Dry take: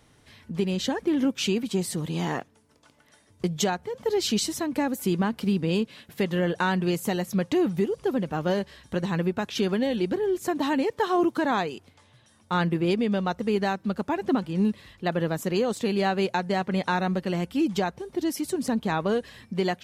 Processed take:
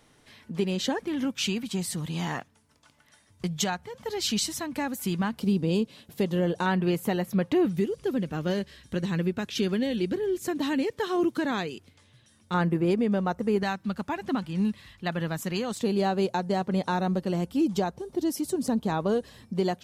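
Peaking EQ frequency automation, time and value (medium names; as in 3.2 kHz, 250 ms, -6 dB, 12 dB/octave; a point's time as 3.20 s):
peaking EQ -8.5 dB 1.4 oct
79 Hz
from 1.04 s 410 Hz
from 5.38 s 1.8 kHz
from 6.66 s 6.7 kHz
from 7.65 s 840 Hz
from 12.54 s 3.5 kHz
from 13.63 s 440 Hz
from 15.82 s 2.1 kHz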